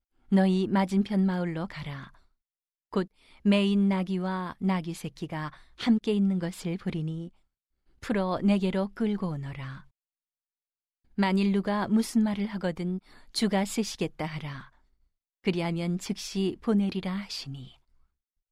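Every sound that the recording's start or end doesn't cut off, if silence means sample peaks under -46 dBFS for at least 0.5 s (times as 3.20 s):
2.93–7.29 s
8.03–9.83 s
11.18–14.68 s
15.44–17.72 s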